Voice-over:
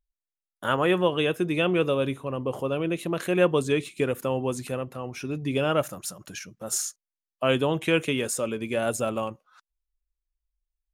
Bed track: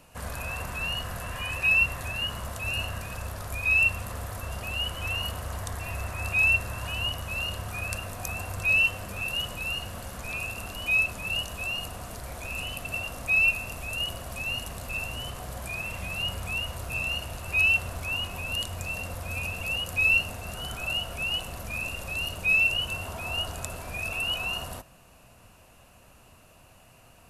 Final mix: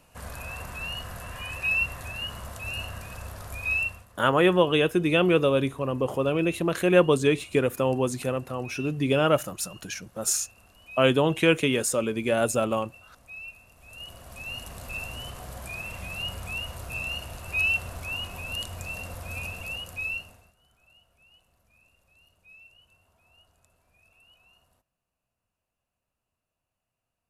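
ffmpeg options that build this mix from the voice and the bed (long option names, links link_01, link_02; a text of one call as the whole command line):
ffmpeg -i stem1.wav -i stem2.wav -filter_complex "[0:a]adelay=3550,volume=2.5dB[link_01];[1:a]volume=13.5dB,afade=type=out:start_time=3.72:duration=0.34:silence=0.158489,afade=type=in:start_time=13.75:duration=1.12:silence=0.141254,afade=type=out:start_time=19.43:duration=1.1:silence=0.0398107[link_02];[link_01][link_02]amix=inputs=2:normalize=0" out.wav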